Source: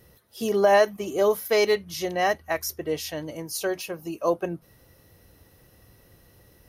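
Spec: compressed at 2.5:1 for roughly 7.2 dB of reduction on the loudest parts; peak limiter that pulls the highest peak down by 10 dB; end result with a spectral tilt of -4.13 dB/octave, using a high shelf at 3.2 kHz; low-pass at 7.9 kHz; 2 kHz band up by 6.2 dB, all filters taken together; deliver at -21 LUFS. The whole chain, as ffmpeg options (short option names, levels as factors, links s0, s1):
-af "lowpass=7900,equalizer=f=2000:t=o:g=8.5,highshelf=f=3200:g=-5,acompressor=threshold=0.0708:ratio=2.5,volume=3.76,alimiter=limit=0.299:level=0:latency=1"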